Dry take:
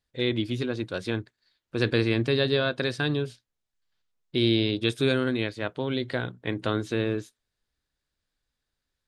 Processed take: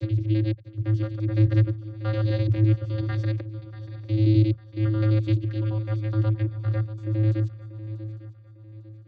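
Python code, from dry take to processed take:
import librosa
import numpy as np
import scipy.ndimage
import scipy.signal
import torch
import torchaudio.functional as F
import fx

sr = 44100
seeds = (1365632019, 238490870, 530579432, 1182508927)

y = fx.block_reorder(x, sr, ms=85.0, group=8)
y = fx.vocoder(y, sr, bands=16, carrier='square', carrier_hz=108.0)
y = fx.echo_swing(y, sr, ms=851, ratio=3, feedback_pct=35, wet_db=-14.5)
y = F.gain(torch.from_numpy(y), 4.5).numpy()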